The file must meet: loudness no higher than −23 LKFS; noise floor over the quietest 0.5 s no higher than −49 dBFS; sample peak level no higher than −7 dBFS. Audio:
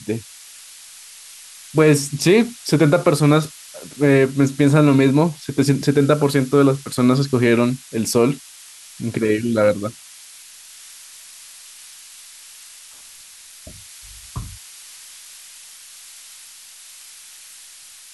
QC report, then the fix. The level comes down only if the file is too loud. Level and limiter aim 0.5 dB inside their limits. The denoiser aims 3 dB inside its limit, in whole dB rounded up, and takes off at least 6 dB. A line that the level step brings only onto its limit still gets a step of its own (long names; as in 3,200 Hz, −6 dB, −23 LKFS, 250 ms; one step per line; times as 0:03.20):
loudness −17.5 LKFS: out of spec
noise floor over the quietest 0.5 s −43 dBFS: out of spec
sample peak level −4.0 dBFS: out of spec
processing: broadband denoise 6 dB, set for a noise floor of −43 dBFS
level −6 dB